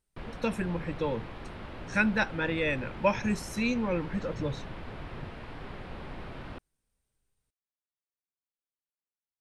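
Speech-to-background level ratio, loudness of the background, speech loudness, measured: 13.0 dB, −43.5 LKFS, −30.5 LKFS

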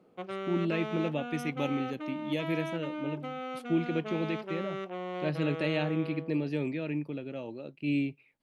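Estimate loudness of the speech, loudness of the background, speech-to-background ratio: −33.5 LKFS, −38.5 LKFS, 5.0 dB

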